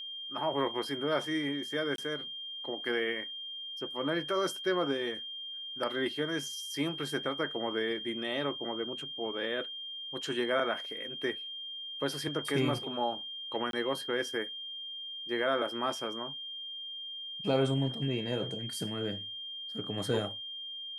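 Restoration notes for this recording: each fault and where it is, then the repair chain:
whine 3.2 kHz -39 dBFS
1.96–1.98 s: dropout 22 ms
13.71–13.73 s: dropout 22 ms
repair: band-stop 3.2 kHz, Q 30; interpolate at 1.96 s, 22 ms; interpolate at 13.71 s, 22 ms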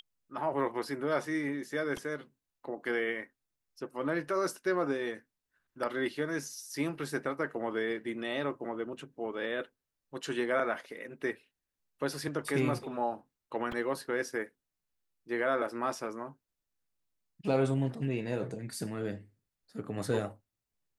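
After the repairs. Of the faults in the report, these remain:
nothing left

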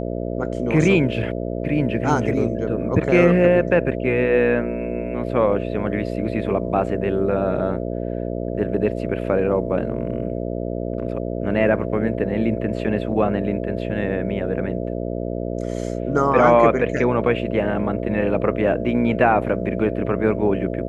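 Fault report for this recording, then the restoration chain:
buzz 60 Hz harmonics 11 -26 dBFS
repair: de-hum 60 Hz, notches 11

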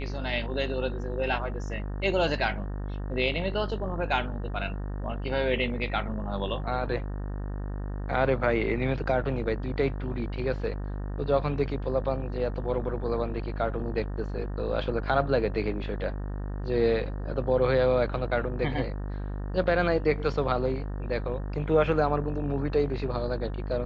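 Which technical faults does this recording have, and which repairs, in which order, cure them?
buzz 50 Hz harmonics 37 -33 dBFS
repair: de-hum 50 Hz, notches 37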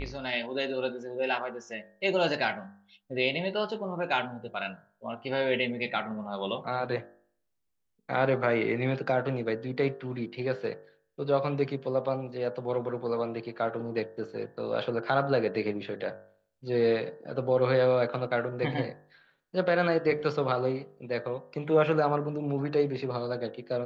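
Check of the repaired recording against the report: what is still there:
nothing left

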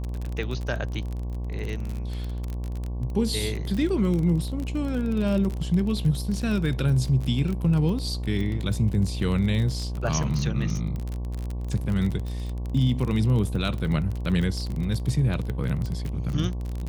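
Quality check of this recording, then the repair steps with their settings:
buzz 60 Hz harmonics 19 -30 dBFS
crackle 30 per s -28 dBFS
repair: de-click; de-hum 60 Hz, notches 19

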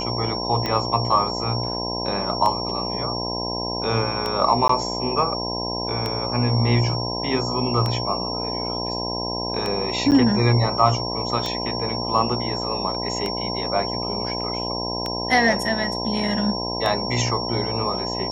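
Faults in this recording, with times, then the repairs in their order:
buzz 60 Hz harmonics 17 -29 dBFS
tick 33 1/3 rpm -11 dBFS
whine 5.5 kHz -28 dBFS
4.68–4.69 s: dropout 14 ms
10.11–10.12 s: dropout 8.9 ms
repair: de-click; de-hum 60 Hz, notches 17; band-stop 5.5 kHz, Q 30; interpolate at 4.68 s, 14 ms; interpolate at 10.11 s, 8.9 ms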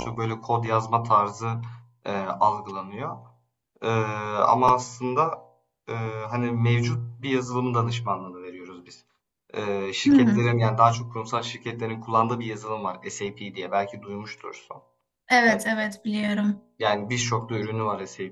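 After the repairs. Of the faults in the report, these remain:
nothing left

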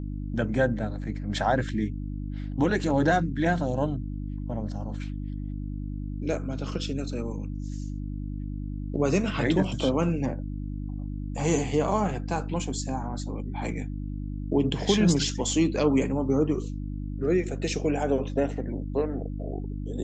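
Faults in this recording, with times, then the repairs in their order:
hum 50 Hz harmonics 6 -33 dBFS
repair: de-hum 50 Hz, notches 6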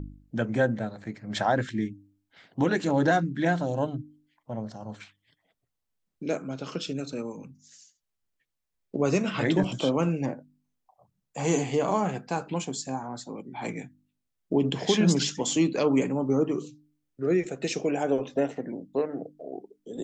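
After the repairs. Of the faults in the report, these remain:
nothing left

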